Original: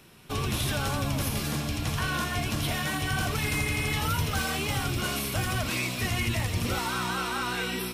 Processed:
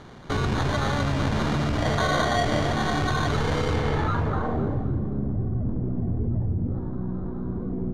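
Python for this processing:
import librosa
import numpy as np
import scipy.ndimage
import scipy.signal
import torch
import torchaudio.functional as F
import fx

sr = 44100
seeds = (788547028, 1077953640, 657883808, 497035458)

p1 = fx.tracing_dist(x, sr, depth_ms=0.14)
p2 = fx.peak_eq(p1, sr, hz=590.0, db=14.5, octaves=1.1, at=(1.78, 2.68))
p3 = fx.over_compress(p2, sr, threshold_db=-33.0, ratio=-1.0)
p4 = p2 + (p3 * 10.0 ** (1.0 / 20.0))
p5 = fx.sample_hold(p4, sr, seeds[0], rate_hz=2600.0, jitter_pct=0)
p6 = fx.filter_sweep_lowpass(p5, sr, from_hz=5100.0, to_hz=260.0, start_s=3.69, end_s=4.95, q=0.78)
y = fx.echo_feedback(p6, sr, ms=263, feedback_pct=41, wet_db=-12.5)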